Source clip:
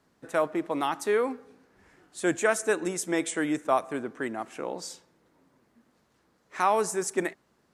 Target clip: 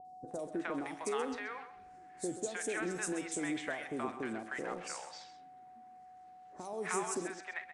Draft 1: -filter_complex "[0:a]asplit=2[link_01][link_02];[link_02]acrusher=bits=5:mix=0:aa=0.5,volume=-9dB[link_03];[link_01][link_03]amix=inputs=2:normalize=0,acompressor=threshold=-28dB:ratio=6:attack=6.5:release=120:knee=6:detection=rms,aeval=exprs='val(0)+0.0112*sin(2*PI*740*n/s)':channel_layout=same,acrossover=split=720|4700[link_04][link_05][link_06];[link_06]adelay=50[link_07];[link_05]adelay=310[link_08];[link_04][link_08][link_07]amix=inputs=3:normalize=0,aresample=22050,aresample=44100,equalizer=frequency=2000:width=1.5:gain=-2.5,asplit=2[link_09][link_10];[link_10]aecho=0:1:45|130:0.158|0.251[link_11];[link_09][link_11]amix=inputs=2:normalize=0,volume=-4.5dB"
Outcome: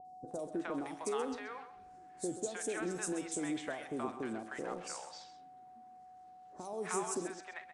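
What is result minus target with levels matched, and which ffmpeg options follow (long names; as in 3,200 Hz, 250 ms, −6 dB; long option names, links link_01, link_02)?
2,000 Hz band −4.0 dB
-filter_complex "[0:a]asplit=2[link_01][link_02];[link_02]acrusher=bits=5:mix=0:aa=0.5,volume=-9dB[link_03];[link_01][link_03]amix=inputs=2:normalize=0,acompressor=threshold=-28dB:ratio=6:attack=6.5:release=120:knee=6:detection=rms,aeval=exprs='val(0)+0.0112*sin(2*PI*740*n/s)':channel_layout=same,acrossover=split=720|4700[link_04][link_05][link_06];[link_06]adelay=50[link_07];[link_05]adelay=310[link_08];[link_04][link_08][link_07]amix=inputs=3:normalize=0,aresample=22050,aresample=44100,equalizer=frequency=2000:width=1.5:gain=4,asplit=2[link_09][link_10];[link_10]aecho=0:1:45|130:0.158|0.251[link_11];[link_09][link_11]amix=inputs=2:normalize=0,volume=-4.5dB"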